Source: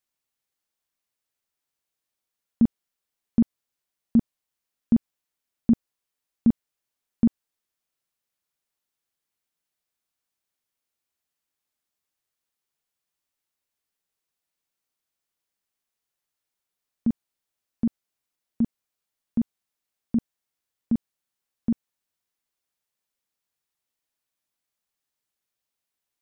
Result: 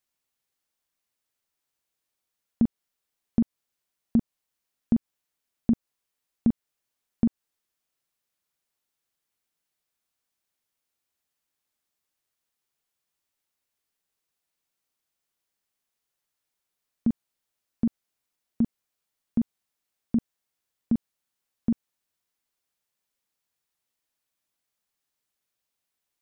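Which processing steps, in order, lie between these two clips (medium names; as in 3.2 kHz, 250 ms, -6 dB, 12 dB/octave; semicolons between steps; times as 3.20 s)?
compression 2.5:1, threshold -22 dBFS, peak gain reduction 5.5 dB; trim +1.5 dB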